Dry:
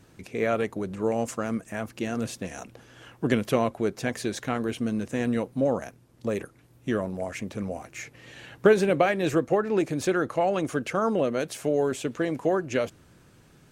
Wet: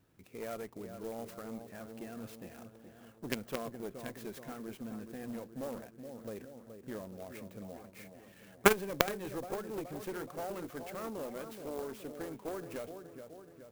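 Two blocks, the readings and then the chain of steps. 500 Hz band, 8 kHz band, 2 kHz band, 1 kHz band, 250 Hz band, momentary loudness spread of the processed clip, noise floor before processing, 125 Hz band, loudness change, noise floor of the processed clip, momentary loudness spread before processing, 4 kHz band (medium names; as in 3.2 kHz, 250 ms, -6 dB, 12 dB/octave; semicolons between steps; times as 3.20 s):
-13.5 dB, -7.0 dB, -8.5 dB, -10.5 dB, -14.5 dB, 17 LU, -57 dBFS, -15.0 dB, -12.0 dB, -59 dBFS, 13 LU, -6.5 dB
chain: feedback echo behind a low-pass 423 ms, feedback 56%, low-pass 1.5 kHz, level -9 dB; Chebyshev shaper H 2 -15 dB, 3 -6 dB, 4 -30 dB, 5 -18 dB, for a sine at -6.5 dBFS; sampling jitter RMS 0.046 ms; trim +3.5 dB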